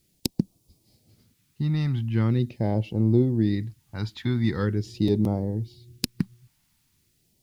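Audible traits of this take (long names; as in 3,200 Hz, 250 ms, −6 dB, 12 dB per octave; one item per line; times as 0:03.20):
a quantiser's noise floor 12 bits, dither triangular
phaser sweep stages 2, 0.42 Hz, lowest notch 450–1,600 Hz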